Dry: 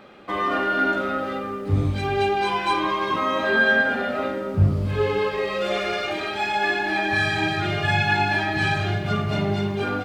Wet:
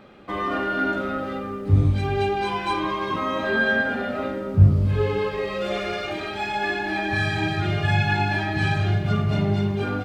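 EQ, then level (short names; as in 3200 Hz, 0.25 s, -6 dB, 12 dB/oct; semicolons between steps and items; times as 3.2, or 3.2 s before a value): low shelf 220 Hz +9.5 dB; -3.5 dB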